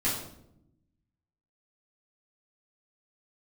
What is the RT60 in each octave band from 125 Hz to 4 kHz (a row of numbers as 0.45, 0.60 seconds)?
1.4, 1.3, 0.90, 0.65, 0.55, 0.50 seconds